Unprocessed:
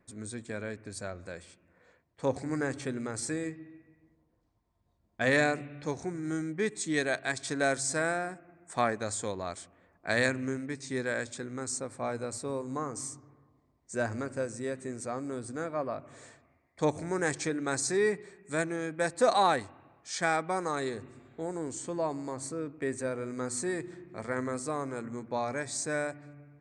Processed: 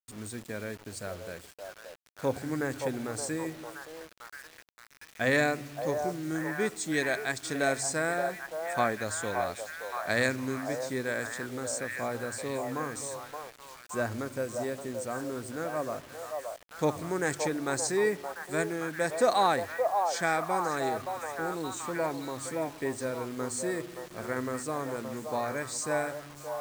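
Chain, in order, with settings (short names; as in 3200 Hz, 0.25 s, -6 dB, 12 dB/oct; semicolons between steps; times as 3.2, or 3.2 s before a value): delay with a stepping band-pass 0.572 s, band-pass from 710 Hz, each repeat 0.7 oct, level -2 dB; bit-crush 8-bit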